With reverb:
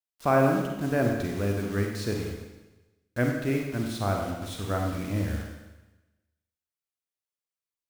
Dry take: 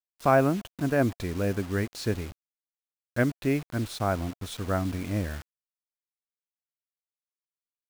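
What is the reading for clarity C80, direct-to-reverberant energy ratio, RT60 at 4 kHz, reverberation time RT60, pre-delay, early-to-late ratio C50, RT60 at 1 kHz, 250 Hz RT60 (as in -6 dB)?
5.0 dB, 1.0 dB, 1.1 s, 1.1 s, 39 ms, 3.0 dB, 1.1 s, 1.1 s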